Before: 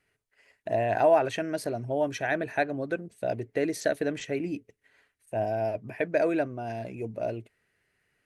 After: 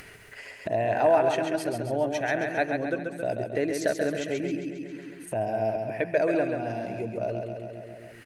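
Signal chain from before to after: feedback delay 135 ms, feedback 50%, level -5 dB; upward compressor, threshold -27 dBFS

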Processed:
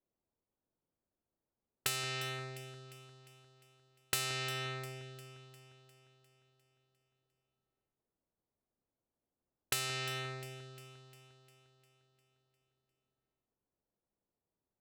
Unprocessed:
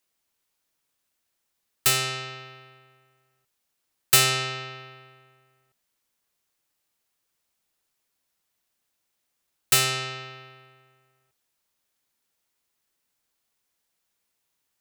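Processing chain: level-controlled noise filter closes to 550 Hz, open at -27 dBFS; compression 5:1, threshold -35 dBFS, peak gain reduction 18.5 dB; on a send: echo whose repeats swap between lows and highs 176 ms, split 1.7 kHz, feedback 73%, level -11.5 dB

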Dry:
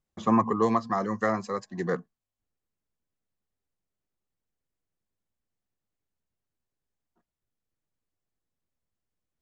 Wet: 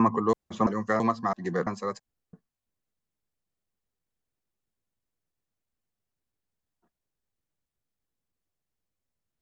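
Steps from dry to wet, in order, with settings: slices played last to first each 333 ms, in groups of 2

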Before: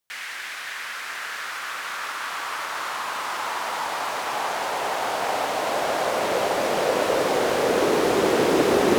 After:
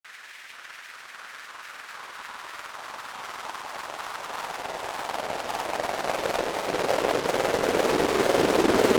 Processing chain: granulator 100 ms, grains 20 per s, pitch spread up and down by 3 st; Chebyshev shaper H 7 -20 dB, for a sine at -9 dBFS

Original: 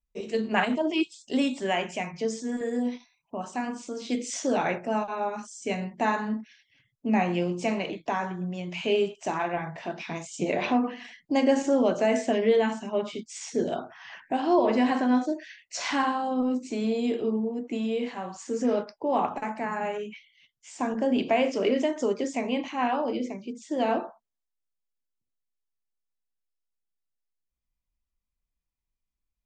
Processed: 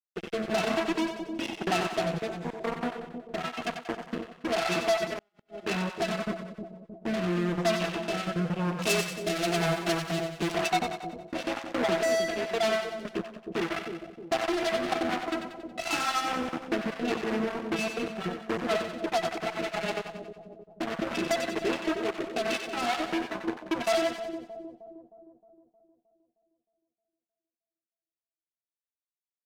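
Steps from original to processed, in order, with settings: random holes in the spectrogram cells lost 30%; pitch-class resonator E, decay 0.22 s; compression 3:1, threshold -51 dBFS, peak gain reduction 18.5 dB; fuzz box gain 54 dB, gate -55 dBFS; bass shelf 370 Hz -10 dB; rotary cabinet horn 1 Hz, later 5 Hz, at 13.97 s; 8.79–10.52 s: treble shelf 4.2 kHz +10.5 dB; two-band feedback delay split 650 Hz, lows 311 ms, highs 92 ms, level -7 dB; 5.13–5.61 s: inverted gate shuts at -20 dBFS, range -41 dB; trim -4 dB

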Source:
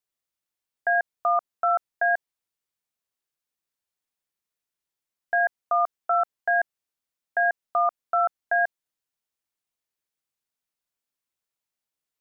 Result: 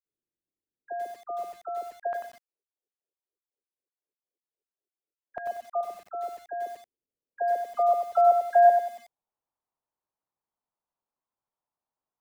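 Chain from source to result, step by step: low-pass sweep 360 Hz -> 950 Hz, 6.48–9.52 s; phase dispersion lows, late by 60 ms, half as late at 950 Hz; 1.88–5.81 s: LFO high-pass saw down 4 Hz 390–1500 Hz; bit-crushed delay 93 ms, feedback 35%, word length 8-bit, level -6 dB

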